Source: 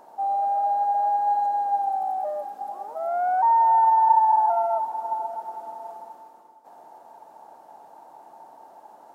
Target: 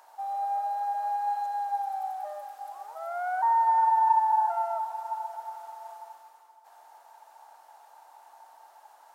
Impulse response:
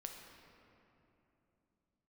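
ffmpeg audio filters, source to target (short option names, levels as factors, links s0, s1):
-filter_complex "[0:a]highpass=1400,asplit=2[s0][s1];[1:a]atrim=start_sample=2205[s2];[s1][s2]afir=irnorm=-1:irlink=0,volume=0.841[s3];[s0][s3]amix=inputs=2:normalize=0"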